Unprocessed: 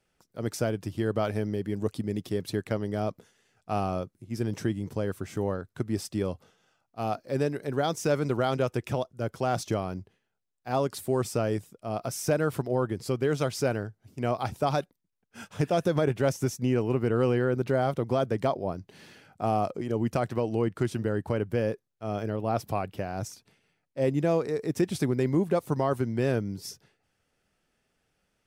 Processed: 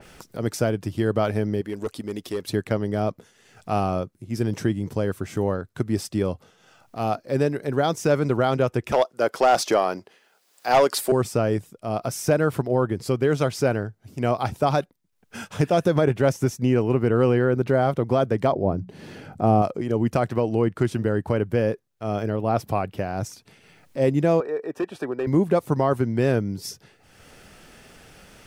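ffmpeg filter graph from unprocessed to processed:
-filter_complex "[0:a]asettb=1/sr,asplit=3[a][b][c];[a]atrim=end=1.614[d];[b]atrim=start=1.61:end=2.47,asetpts=PTS-STARTPTS,afade=t=in:d=0.004:c=qsin,afade=t=out:st=0.856:d=0.004:c=qsin,equalizer=f=130:t=o:w=1.6:g=-13.5,bandreject=f=810:w=16,asoftclip=type=hard:threshold=-27dB[e];[c]atrim=start=2.466[f];[d][e]acrossfade=d=0.004:c1=hsin:c2=qsin[g];[g][f]acrossfade=d=0.004:c1=qsin:c2=hsin,asettb=1/sr,asplit=3[h][i][j];[h]atrim=end=8.924[k];[i]atrim=start=8.92:end=11.12,asetpts=PTS-STARTPTS,afade=t=in:d=0.004:c=qsin,afade=t=out:st=2.196:d=0.004:c=qsin,highpass=460,equalizer=f=4.8k:w=5.8:g=4.5,aeval=exprs='0.158*sin(PI/2*1.78*val(0)/0.158)':c=same[l];[j]atrim=start=11.116[m];[k][l]acrossfade=d=0.004:c1=hsin:c2=qsin[n];[n][m]acrossfade=d=0.004:c1=qsin:c2=hsin,asettb=1/sr,asplit=3[o][p][q];[o]atrim=end=18.524[r];[p]atrim=start=18.52:end=19.62,asetpts=PTS-STARTPTS,afade=t=in:d=0.004:c=qsin,afade=t=out:st=1.096:d=0.004:c=qsin,tiltshelf=f=850:g=6.5,bandreject=f=60:t=h:w=6,bandreject=f=120:t=h:w=6,bandreject=f=180:t=h:w=6,bandreject=f=240:t=h:w=6[s];[q]atrim=start=19.616[t];[r][s]acrossfade=d=0.004:c1=hsin:c2=qsin[u];[u][t]acrossfade=d=0.004:c1=qsin:c2=hsin,asettb=1/sr,asplit=3[v][w][x];[v]atrim=end=24.404[y];[w]atrim=start=24.4:end=25.27,asetpts=PTS-STARTPTS,afade=t=in:d=0.004:c=qsin,afade=t=out:st=0.866:d=0.004:c=qsin,acrossover=split=350 2400:gain=0.0891 1 0.126[z][aa][ab];[z][aa][ab]amix=inputs=3:normalize=0,volume=25dB,asoftclip=hard,volume=-25dB,asuperstop=centerf=2100:order=20:qfactor=7.3[ac];[x]atrim=start=25.266[ad];[y][ac]acrossfade=d=0.004:c1=hsin:c2=qsin[ae];[ae][ad]acrossfade=d=0.004:c1=qsin:c2=hsin,acompressor=mode=upward:threshold=-36dB:ratio=2.5,adynamicequalizer=threshold=0.00501:dfrequency=2900:dqfactor=0.7:tfrequency=2900:tqfactor=0.7:attack=5:release=100:ratio=0.375:range=2.5:mode=cutabove:tftype=highshelf,volume=5.5dB"

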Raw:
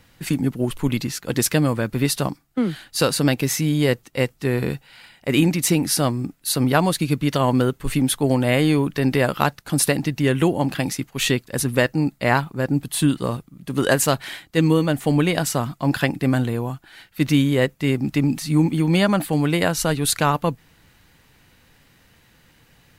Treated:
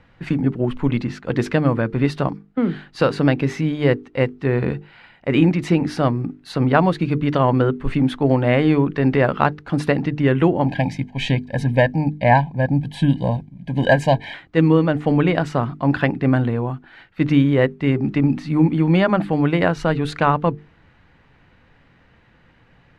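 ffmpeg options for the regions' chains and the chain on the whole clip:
-filter_complex "[0:a]asettb=1/sr,asplit=3[a][b][c];[a]atrim=end=10.664[d];[b]atrim=start=10.66:end=14.34,asetpts=PTS-STARTPTS,afade=t=in:d=0.004:c=qsin,afade=t=out:st=3.676:d=0.004:c=qsin,asuperstop=centerf=1300:order=12:qfactor=2.4,aecho=1:1:1.3:0.73,atrim=end_sample=162288[e];[c]atrim=start=14.336[f];[d][e]acrossfade=d=0.004:c1=hsin:c2=qsin[g];[g][f]acrossfade=d=0.004:c1=qsin:c2=hsin,lowpass=2.1k,bandreject=f=50:t=h:w=6,bandreject=f=100:t=h:w=6,bandreject=f=150:t=h:w=6,bandreject=f=200:t=h:w=6,bandreject=f=250:t=h:w=6,bandreject=f=300:t=h:w=6,bandreject=f=350:t=h:w=6,bandreject=f=400:t=h:w=6,bandreject=f=450:t=h:w=6,volume=3dB"

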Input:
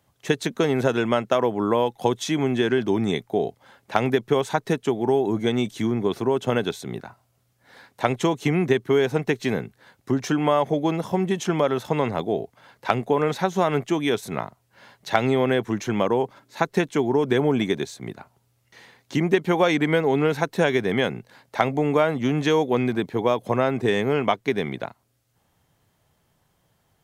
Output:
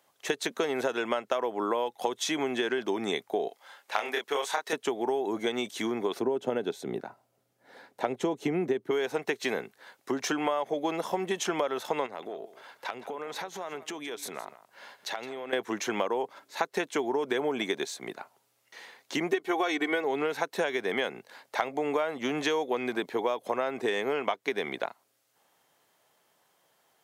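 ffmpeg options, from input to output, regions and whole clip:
-filter_complex "[0:a]asettb=1/sr,asplit=3[a][b][c];[a]atrim=end=3.484[d];[b]atrim=start=3.48:end=4.73,asetpts=PTS-STARTPTS,afade=t=in:d=0.004:c=qsin,afade=t=out:st=1.246:d=0.004:c=qsin,highpass=f=1k:p=1,asplit=2[e][f];[f]adelay=28,volume=-2.5dB[g];[e][g]amix=inputs=2:normalize=0,atrim=end_sample=55125[h];[c]atrim=start=4.726[i];[d][h]acrossfade=d=0.004:c1=hsin:c2=qsin[j];[j][i]acrossfade=d=0.004:c1=qsin:c2=hsin,asettb=1/sr,asplit=3[k][l][m];[k]atrim=end=6.194[n];[l]atrim=start=6.19:end=8.91,asetpts=PTS-STARTPTS,afade=t=in:d=0.004:c=qsin,afade=t=out:st=2.716:d=0.004:c=qsin,tiltshelf=f=650:g=8,bandreject=f=1.1k:w=11[o];[m]atrim=start=8.906[p];[n][o]acrossfade=d=0.004:c1=hsin:c2=qsin[q];[q][p]acrossfade=d=0.004:c1=qsin:c2=hsin,asettb=1/sr,asplit=3[r][s][t];[r]atrim=end=12.064[u];[s]atrim=start=12.06:end=15.53,asetpts=PTS-STARTPTS,afade=t=in:d=0.004:c=qsin,afade=t=out:st=3.466:d=0.004:c=qsin,acompressor=threshold=-32dB:ratio=8:attack=3.2:release=140:knee=1:detection=peak,aecho=1:1:166:0.168,atrim=end_sample=153027[v];[t]atrim=start=15.526[w];[u][v]acrossfade=d=0.004:c1=hsin:c2=qsin[x];[x][w]acrossfade=d=0.004:c1=qsin:c2=hsin,asettb=1/sr,asplit=3[y][z][aa];[y]atrim=end=19.314[ab];[z]atrim=start=19.31:end=20.04,asetpts=PTS-STARTPTS,afade=t=in:d=0.004:c=qsin,afade=t=out:st=0.726:d=0.004:c=qsin,bandreject=f=50:t=h:w=6,bandreject=f=100:t=h:w=6,bandreject=f=150:t=h:w=6,bandreject=f=200:t=h:w=6,bandreject=f=250:t=h:w=6,aecho=1:1:2.7:0.73,atrim=end_sample=32193[ac];[aa]atrim=start=20.036[ad];[ab][ac]acrossfade=d=0.004:c1=hsin:c2=qsin[ae];[ae][ad]acrossfade=d=0.004:c1=qsin:c2=hsin,highpass=420,acompressor=threshold=-27dB:ratio=5,volume=1.5dB"

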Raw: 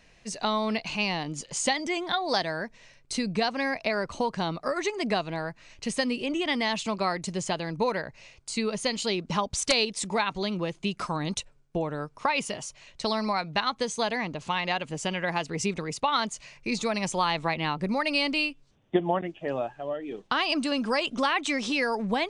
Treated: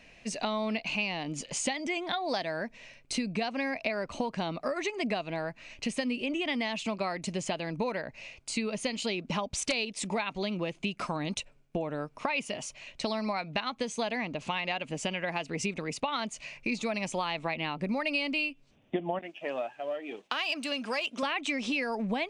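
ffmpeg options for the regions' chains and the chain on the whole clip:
-filter_complex "[0:a]asettb=1/sr,asplit=3[a][b][c];[a]atrim=end=19.194[d];[b]atrim=start=19.19:end=21.23,asetpts=PTS-STARTPTS,afade=t=in:d=0.004:c=qsin,afade=t=out:st=2.036:d=0.004:c=qsin,aeval=exprs='if(lt(val(0),0),0.708*val(0),val(0))':c=same,highpass=f=600:p=1,highshelf=f=5k:g=4.5[e];[c]atrim=start=21.226[f];[d][e]acrossfade=d=0.004:c1=hsin:c2=qsin[g];[g][f]acrossfade=d=0.004:c1=qsin:c2=hsin,equalizer=f=250:t=o:w=0.67:g=7,equalizer=f=630:t=o:w=0.67:g=6,equalizer=f=2.5k:t=o:w=0.67:g=9,acompressor=threshold=-29dB:ratio=3,volume=-1.5dB"

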